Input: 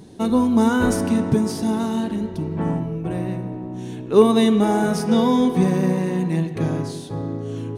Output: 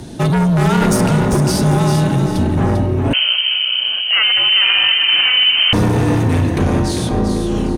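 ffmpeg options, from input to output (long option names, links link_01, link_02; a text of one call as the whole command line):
ffmpeg -i in.wav -filter_complex "[0:a]highpass=frequency=180:poles=1,acompressor=threshold=-21dB:ratio=2,aeval=exprs='0.282*sin(PI/2*2.51*val(0)/0.282)':channel_layout=same,afreqshift=-70,asoftclip=type=tanh:threshold=-10.5dB,asplit=5[link_01][link_02][link_03][link_04][link_05];[link_02]adelay=396,afreqshift=33,volume=-7dB[link_06];[link_03]adelay=792,afreqshift=66,volume=-16.6dB[link_07];[link_04]adelay=1188,afreqshift=99,volume=-26.3dB[link_08];[link_05]adelay=1584,afreqshift=132,volume=-35.9dB[link_09];[link_01][link_06][link_07][link_08][link_09]amix=inputs=5:normalize=0,asettb=1/sr,asplit=3[link_10][link_11][link_12];[link_10]atrim=end=3.134[link_13];[link_11]atrim=start=3.13:end=5.73,asetpts=PTS-STARTPTS,afade=type=in:duration=0.004:curve=qsin,afade=type=out:start_time=2.596:duration=0.004:curve=qsin,lowpass=frequency=2700:width_type=q:width=0.5098,lowpass=frequency=2700:width_type=q:width=0.6013,lowpass=frequency=2700:width_type=q:width=0.9,lowpass=frequency=2700:width_type=q:width=2.563,afreqshift=-3200[link_14];[link_12]atrim=start=5.726[link_15];[link_13][link_14]acrossfade=duration=0.004:curve1=hsin:curve2=qsin[link_16];[link_16][link_15]acrossfade=duration=0.004:curve1=qsin:curve2=hsin,volume=2.5dB" out.wav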